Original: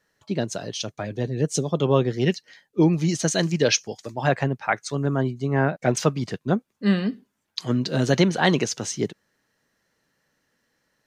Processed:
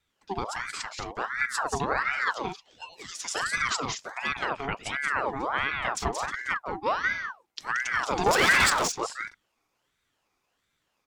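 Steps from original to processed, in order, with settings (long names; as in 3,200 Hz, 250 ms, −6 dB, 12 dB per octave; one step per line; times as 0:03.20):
0:02.35–0:03.32: Butterworth high-pass 840 Hz 72 dB per octave
brickwall limiter −12 dBFS, peak gain reduction 7.5 dB
0:08.26–0:08.70: leveller curve on the samples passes 5
pitch vibrato 5.4 Hz 32 cents
on a send: loudspeakers that aren't time-aligned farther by 61 metres −5 dB, 75 metres −9 dB
on the sum: ring modulator whose carrier an LFO sweeps 1,200 Hz, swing 55%, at 1.4 Hz
level −3.5 dB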